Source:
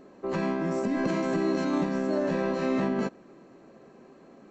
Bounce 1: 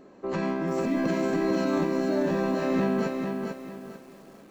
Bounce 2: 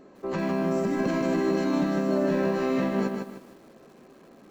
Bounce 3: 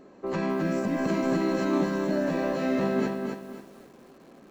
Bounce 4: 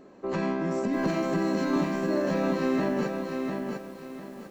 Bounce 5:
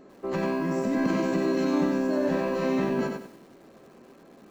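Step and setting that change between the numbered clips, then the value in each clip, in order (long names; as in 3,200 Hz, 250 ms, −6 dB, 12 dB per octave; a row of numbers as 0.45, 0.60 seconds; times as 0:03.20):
feedback echo at a low word length, delay time: 445, 153, 264, 699, 95 milliseconds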